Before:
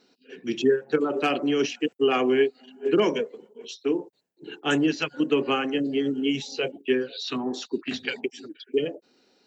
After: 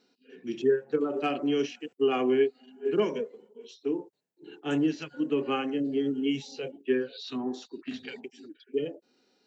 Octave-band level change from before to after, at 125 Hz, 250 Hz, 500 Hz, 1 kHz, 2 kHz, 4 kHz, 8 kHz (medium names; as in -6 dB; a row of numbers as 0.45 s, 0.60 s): -4.0 dB, -3.5 dB, -3.5 dB, -5.5 dB, -8.5 dB, -8.5 dB, no reading